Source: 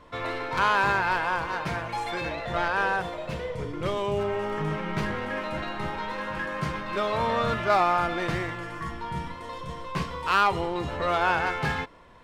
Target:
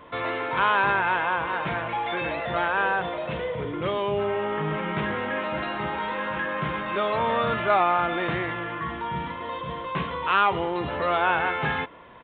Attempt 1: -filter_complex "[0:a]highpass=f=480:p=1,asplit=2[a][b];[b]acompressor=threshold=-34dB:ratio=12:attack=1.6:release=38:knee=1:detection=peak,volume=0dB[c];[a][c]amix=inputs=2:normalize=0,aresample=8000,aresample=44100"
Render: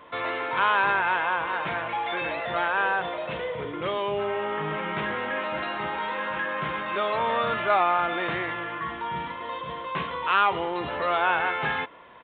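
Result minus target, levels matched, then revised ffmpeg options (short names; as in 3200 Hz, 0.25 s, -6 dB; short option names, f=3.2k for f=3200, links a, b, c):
125 Hz band -6.0 dB
-filter_complex "[0:a]highpass=f=160:p=1,asplit=2[a][b];[b]acompressor=threshold=-34dB:ratio=12:attack=1.6:release=38:knee=1:detection=peak,volume=0dB[c];[a][c]amix=inputs=2:normalize=0,aresample=8000,aresample=44100"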